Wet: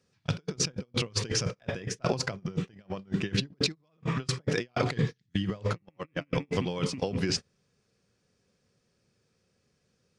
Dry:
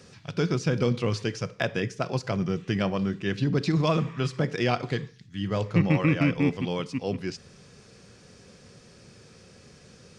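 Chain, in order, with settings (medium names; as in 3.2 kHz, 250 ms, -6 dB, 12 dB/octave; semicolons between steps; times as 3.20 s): compressor with a negative ratio -35 dBFS, ratio -1; gate -33 dBFS, range -33 dB; trim +4.5 dB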